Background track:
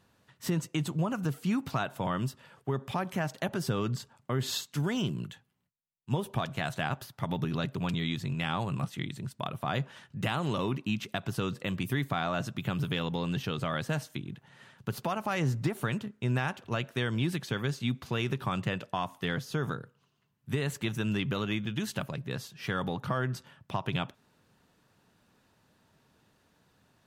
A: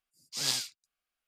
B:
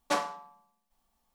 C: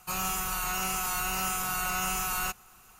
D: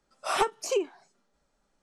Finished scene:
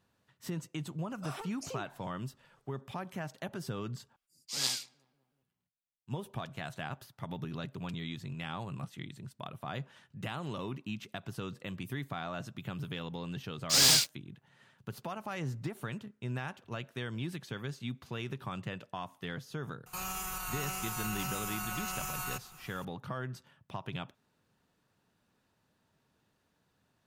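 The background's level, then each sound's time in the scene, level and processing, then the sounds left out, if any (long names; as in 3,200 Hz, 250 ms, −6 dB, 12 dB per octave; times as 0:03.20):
background track −8 dB
0:00.99: mix in D −5.5 dB + downward compressor, threshold −35 dBFS
0:04.16: overwrite with A −2 dB + feedback echo with a low-pass in the loop 188 ms, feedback 66%, low-pass 1,100 Hz, level −23 dB
0:13.37: mix in A −5.5 dB + leveller curve on the samples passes 5
0:19.86: mix in C + brickwall limiter −29 dBFS
not used: B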